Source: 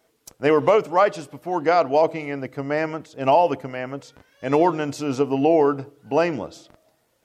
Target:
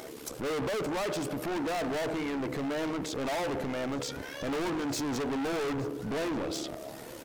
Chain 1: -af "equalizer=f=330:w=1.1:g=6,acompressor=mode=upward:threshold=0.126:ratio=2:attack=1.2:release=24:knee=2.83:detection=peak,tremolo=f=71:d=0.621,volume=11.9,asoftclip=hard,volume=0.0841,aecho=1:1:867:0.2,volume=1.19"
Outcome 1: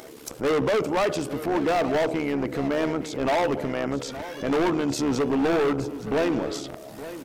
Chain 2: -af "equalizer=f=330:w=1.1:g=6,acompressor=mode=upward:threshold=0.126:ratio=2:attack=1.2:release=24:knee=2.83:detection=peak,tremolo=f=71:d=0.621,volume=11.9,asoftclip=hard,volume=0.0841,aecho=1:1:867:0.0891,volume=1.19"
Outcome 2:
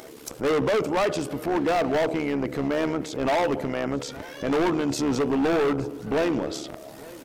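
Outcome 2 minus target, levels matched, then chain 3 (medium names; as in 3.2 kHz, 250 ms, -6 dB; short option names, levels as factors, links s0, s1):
overload inside the chain: distortion -4 dB
-af "equalizer=f=330:w=1.1:g=6,acompressor=mode=upward:threshold=0.126:ratio=2:attack=1.2:release=24:knee=2.83:detection=peak,tremolo=f=71:d=0.621,volume=39.8,asoftclip=hard,volume=0.0251,aecho=1:1:867:0.0891,volume=1.19"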